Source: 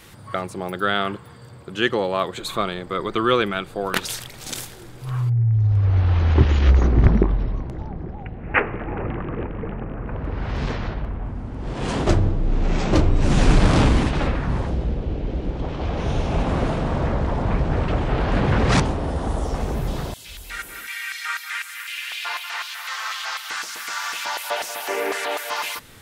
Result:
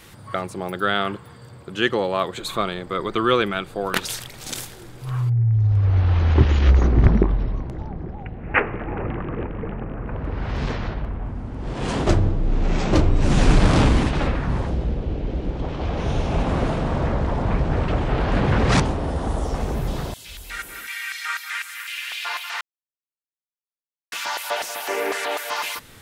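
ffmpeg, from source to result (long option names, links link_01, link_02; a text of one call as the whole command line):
ffmpeg -i in.wav -filter_complex "[0:a]asplit=3[link_01][link_02][link_03];[link_01]atrim=end=22.61,asetpts=PTS-STARTPTS,afade=type=out:start_time=22.606:duration=0.004:curve=hsin[link_04];[link_02]atrim=start=22.61:end=24.12,asetpts=PTS-STARTPTS,volume=0[link_05];[link_03]atrim=start=24.12,asetpts=PTS-STARTPTS,afade=type=in:duration=0.004:curve=hsin[link_06];[link_04][link_05][link_06]concat=n=3:v=0:a=1" out.wav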